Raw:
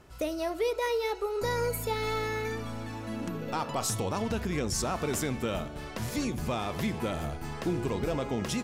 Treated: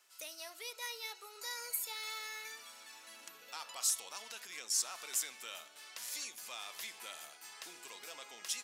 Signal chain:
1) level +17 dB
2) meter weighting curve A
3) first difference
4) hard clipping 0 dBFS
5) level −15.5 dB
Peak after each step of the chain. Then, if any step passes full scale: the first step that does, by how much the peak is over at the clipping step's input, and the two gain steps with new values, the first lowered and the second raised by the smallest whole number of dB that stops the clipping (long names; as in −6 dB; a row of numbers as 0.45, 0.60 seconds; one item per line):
−3.0, −0.5, −4.5, −4.5, −20.0 dBFS
no step passes full scale